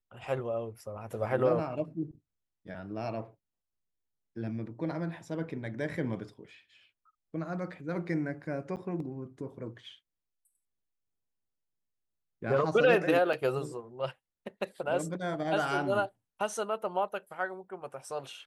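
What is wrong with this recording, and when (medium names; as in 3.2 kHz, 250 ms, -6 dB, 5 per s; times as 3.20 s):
8.76–8.77 s: dropout 8.9 ms
13.33 s: dropout 4.2 ms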